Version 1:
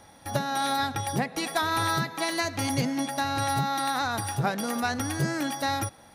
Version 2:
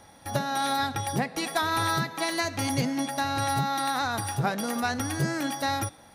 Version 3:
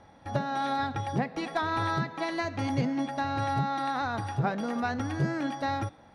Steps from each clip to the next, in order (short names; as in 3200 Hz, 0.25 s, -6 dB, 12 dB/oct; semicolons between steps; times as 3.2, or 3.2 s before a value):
de-hum 298.1 Hz, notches 32
tape spacing loss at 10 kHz 24 dB